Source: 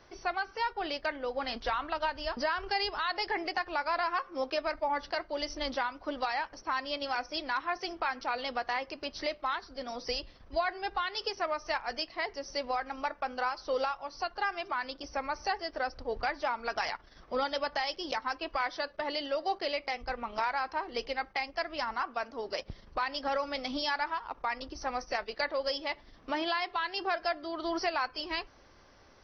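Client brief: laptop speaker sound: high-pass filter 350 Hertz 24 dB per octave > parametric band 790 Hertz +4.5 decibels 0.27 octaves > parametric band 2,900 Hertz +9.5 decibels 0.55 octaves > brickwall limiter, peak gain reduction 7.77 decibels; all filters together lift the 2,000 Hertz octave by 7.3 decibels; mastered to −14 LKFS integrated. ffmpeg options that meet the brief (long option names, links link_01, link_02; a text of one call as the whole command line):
ffmpeg -i in.wav -af "highpass=frequency=350:width=0.5412,highpass=frequency=350:width=1.3066,equalizer=frequency=790:width_type=o:width=0.27:gain=4.5,equalizer=frequency=2000:width_type=o:gain=6.5,equalizer=frequency=2900:width_type=o:width=0.55:gain=9.5,volume=17dB,alimiter=limit=-2.5dB:level=0:latency=1" out.wav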